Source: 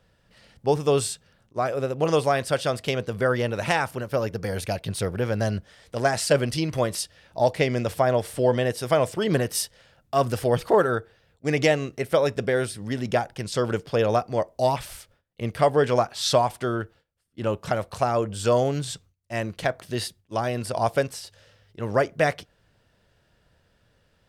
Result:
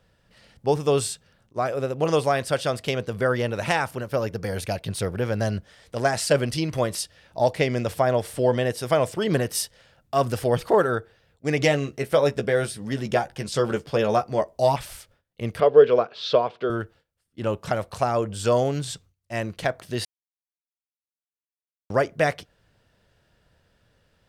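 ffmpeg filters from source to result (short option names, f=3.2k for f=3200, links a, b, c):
-filter_complex "[0:a]asettb=1/sr,asplit=3[a][b][c];[a]atrim=end=11.594[d];[b]atrim=start=11.59:end=14.76,asetpts=PTS-STARTPTS,afade=t=in:d=0.004:c=qsin,afade=t=out:st=3.166:d=0.004:c=qsin,asplit=2[e][f];[f]adelay=14,volume=-7dB[g];[e][g]amix=inputs=2:normalize=0,atrim=end_sample=139797[h];[c]atrim=start=14.756[i];[d][h]acrossfade=d=0.004:c1=hsin:c2=qsin[j];[j][i]acrossfade=d=0.004:c1=qsin:c2=hsin,asettb=1/sr,asplit=3[k][l][m];[k]atrim=end=15.604[n];[l]atrim=start=15.6:end=16.7,asetpts=PTS-STARTPTS,afade=t=in:d=0.004:c=qsin,afade=t=out:st=1.096:d=0.004:c=qsin,highpass=210,equalizer=f=280:t=q:w=4:g=-5,equalizer=f=450:t=q:w=4:g=10,equalizer=f=830:t=q:w=4:g=-9,equalizer=f=1.9k:t=q:w=4:g=-7,lowpass=f=3.8k:w=0.5412,lowpass=f=3.8k:w=1.3066[o];[m]atrim=start=16.696[p];[n][o]acrossfade=d=0.004:c1=hsin:c2=qsin[q];[q][p]acrossfade=d=0.004:c1=qsin:c2=hsin,asplit=3[r][s][t];[r]atrim=end=20.05,asetpts=PTS-STARTPTS,afade=t=out:st=20.046:d=0.004:c=hsin[u];[s]atrim=start=20.05:end=21.9,asetpts=PTS-STARTPTS,volume=0[v];[t]atrim=start=21.9,asetpts=PTS-STARTPTS,afade=t=in:d=0.004:c=hsin[w];[u][v][w]concat=n=3:v=0:a=1"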